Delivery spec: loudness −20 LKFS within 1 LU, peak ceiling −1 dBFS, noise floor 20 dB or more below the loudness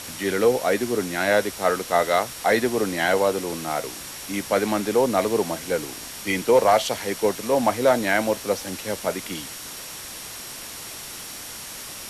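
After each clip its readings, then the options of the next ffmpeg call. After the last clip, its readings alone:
interfering tone 5,600 Hz; level of the tone −45 dBFS; background noise floor −37 dBFS; target noise floor −43 dBFS; integrated loudness −23.0 LKFS; sample peak −7.0 dBFS; target loudness −20.0 LKFS
→ -af "bandreject=frequency=5600:width=30"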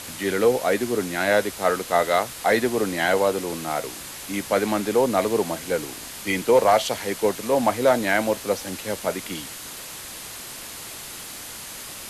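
interfering tone none found; background noise floor −37 dBFS; target noise floor −43 dBFS
→ -af "afftdn=noise_reduction=6:noise_floor=-37"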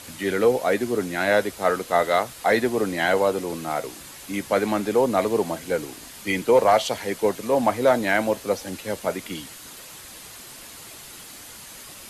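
background noise floor −42 dBFS; target noise floor −43 dBFS
→ -af "afftdn=noise_reduction=6:noise_floor=-42"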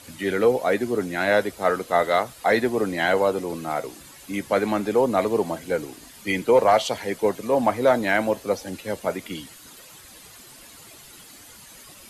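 background noise floor −47 dBFS; integrated loudness −23.0 LKFS; sample peak −7.5 dBFS; target loudness −20.0 LKFS
→ -af "volume=3dB"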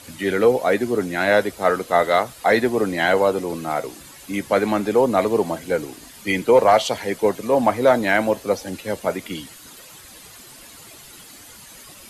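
integrated loudness −20.0 LKFS; sample peak −4.5 dBFS; background noise floor −44 dBFS

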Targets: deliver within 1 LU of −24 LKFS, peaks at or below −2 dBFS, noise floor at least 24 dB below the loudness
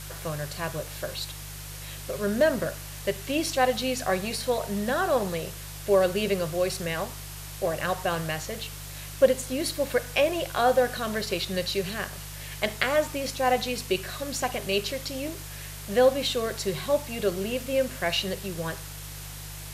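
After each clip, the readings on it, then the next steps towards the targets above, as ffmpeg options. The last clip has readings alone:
mains hum 50 Hz; hum harmonics up to 150 Hz; level of the hum −40 dBFS; background noise floor −40 dBFS; target noise floor −52 dBFS; integrated loudness −27.5 LKFS; sample peak −6.5 dBFS; target loudness −24.0 LKFS
→ -af "bandreject=frequency=50:width_type=h:width=4,bandreject=frequency=100:width_type=h:width=4,bandreject=frequency=150:width_type=h:width=4"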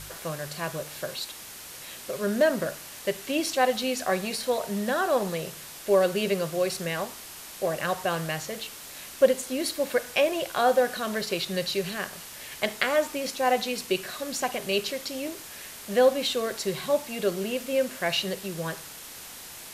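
mains hum none found; background noise floor −43 dBFS; target noise floor −52 dBFS
→ -af "afftdn=noise_reduction=9:noise_floor=-43"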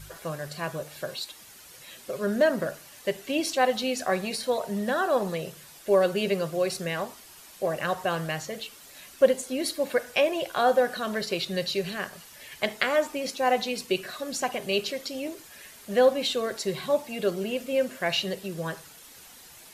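background noise floor −50 dBFS; target noise floor −52 dBFS
→ -af "afftdn=noise_reduction=6:noise_floor=-50"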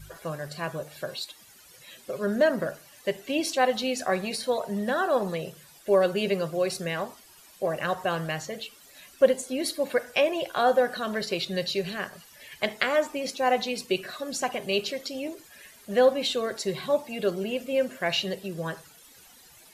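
background noise floor −53 dBFS; integrated loudness −27.5 LKFS; sample peak −6.0 dBFS; target loudness −24.0 LKFS
→ -af "volume=3.5dB"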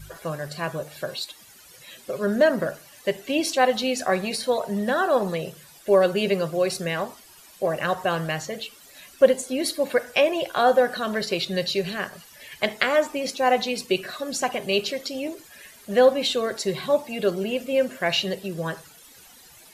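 integrated loudness −24.0 LKFS; sample peak −2.5 dBFS; background noise floor −50 dBFS

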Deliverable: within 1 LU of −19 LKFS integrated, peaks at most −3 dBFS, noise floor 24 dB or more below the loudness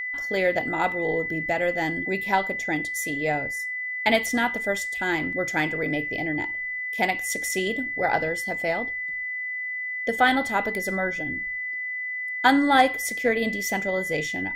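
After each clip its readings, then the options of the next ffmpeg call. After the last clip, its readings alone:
interfering tone 2,000 Hz; level of the tone −28 dBFS; integrated loudness −25.0 LKFS; sample peak −6.0 dBFS; target loudness −19.0 LKFS
→ -af "bandreject=frequency=2000:width=30"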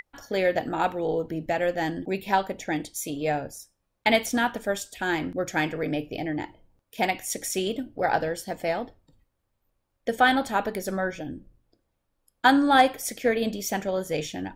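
interfering tone none found; integrated loudness −26.5 LKFS; sample peak −6.0 dBFS; target loudness −19.0 LKFS
→ -af "volume=7.5dB,alimiter=limit=-3dB:level=0:latency=1"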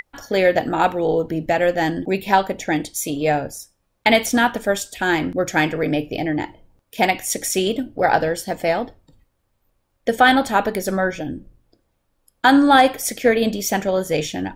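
integrated loudness −19.5 LKFS; sample peak −3.0 dBFS; background noise floor −70 dBFS

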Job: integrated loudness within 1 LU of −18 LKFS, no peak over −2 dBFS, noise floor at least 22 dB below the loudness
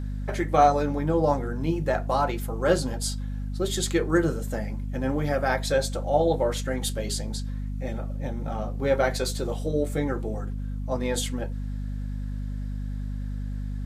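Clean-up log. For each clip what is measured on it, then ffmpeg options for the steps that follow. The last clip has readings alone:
mains hum 50 Hz; hum harmonics up to 250 Hz; level of the hum −28 dBFS; integrated loudness −27.5 LKFS; sample peak −6.0 dBFS; target loudness −18.0 LKFS
→ -af "bandreject=frequency=50:width_type=h:width=6,bandreject=frequency=100:width_type=h:width=6,bandreject=frequency=150:width_type=h:width=6,bandreject=frequency=200:width_type=h:width=6,bandreject=frequency=250:width_type=h:width=6"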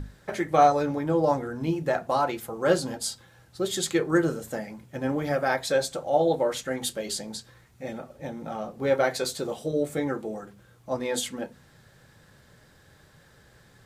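mains hum none found; integrated loudness −27.0 LKFS; sample peak −7.0 dBFS; target loudness −18.0 LKFS
→ -af "volume=9dB,alimiter=limit=-2dB:level=0:latency=1"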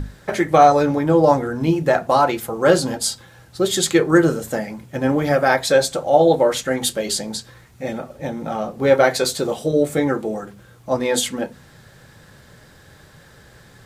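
integrated loudness −18.5 LKFS; sample peak −2.0 dBFS; background noise floor −48 dBFS

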